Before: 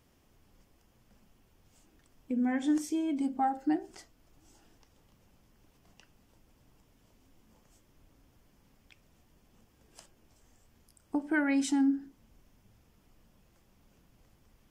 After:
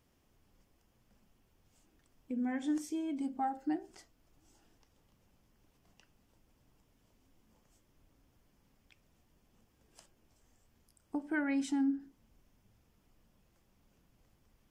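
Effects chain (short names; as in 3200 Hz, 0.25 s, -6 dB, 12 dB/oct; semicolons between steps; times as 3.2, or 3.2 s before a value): 11.34–12 tone controls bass +2 dB, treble -4 dB; gain -5.5 dB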